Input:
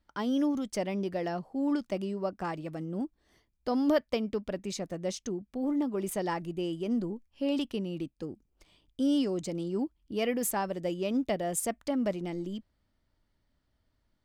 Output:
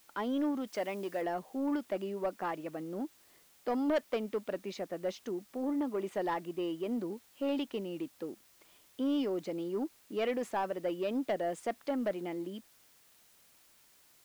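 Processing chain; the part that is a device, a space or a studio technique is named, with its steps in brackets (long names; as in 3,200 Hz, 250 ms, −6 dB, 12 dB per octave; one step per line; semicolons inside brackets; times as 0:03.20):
tape answering machine (band-pass filter 310–2,900 Hz; soft clipping −25.5 dBFS, distortion −16 dB; tape wow and flutter 19 cents; white noise bed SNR 28 dB)
0:00.67–0:01.22: spectral tilt +1.5 dB per octave
level +1 dB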